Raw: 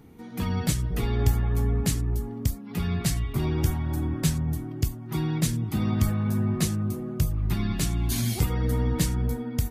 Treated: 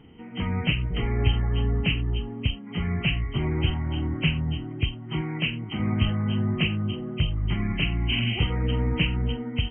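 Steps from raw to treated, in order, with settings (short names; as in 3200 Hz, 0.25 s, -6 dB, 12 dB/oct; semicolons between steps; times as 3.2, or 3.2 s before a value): nonlinear frequency compression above 1900 Hz 4:1; 5.21–5.8 low shelf 150 Hz -11 dB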